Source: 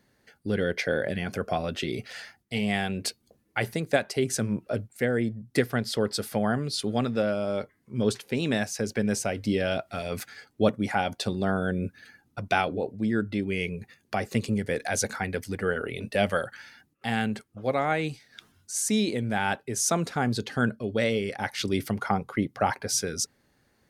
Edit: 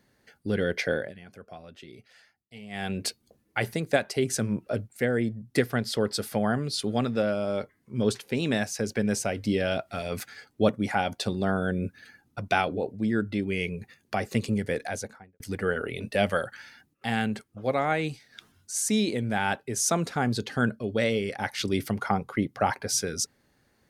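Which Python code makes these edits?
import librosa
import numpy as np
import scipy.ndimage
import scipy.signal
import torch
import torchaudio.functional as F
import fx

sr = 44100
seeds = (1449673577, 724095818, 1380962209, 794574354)

y = fx.studio_fade_out(x, sr, start_s=14.65, length_s=0.75)
y = fx.edit(y, sr, fx.fade_down_up(start_s=0.92, length_s=1.99, db=-16.5, fade_s=0.21), tone=tone)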